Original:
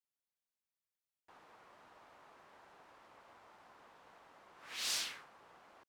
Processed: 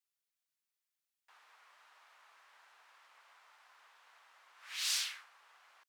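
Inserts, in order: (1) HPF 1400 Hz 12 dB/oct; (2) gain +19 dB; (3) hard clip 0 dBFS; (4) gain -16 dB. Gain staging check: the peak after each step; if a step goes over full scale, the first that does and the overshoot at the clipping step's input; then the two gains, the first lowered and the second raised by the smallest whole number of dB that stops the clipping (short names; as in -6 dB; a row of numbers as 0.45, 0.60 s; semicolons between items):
-24.0, -5.0, -5.0, -21.0 dBFS; no overload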